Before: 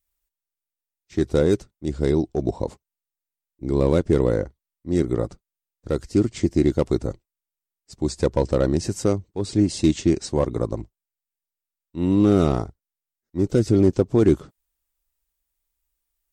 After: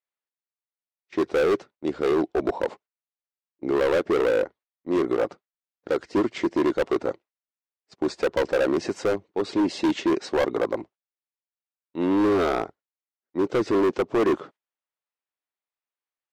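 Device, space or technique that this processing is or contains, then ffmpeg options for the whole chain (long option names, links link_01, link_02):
walkie-talkie: -af "highpass=430,lowpass=2600,asoftclip=type=hard:threshold=-25.5dB,agate=range=-12dB:threshold=-56dB:ratio=16:detection=peak,volume=8dB"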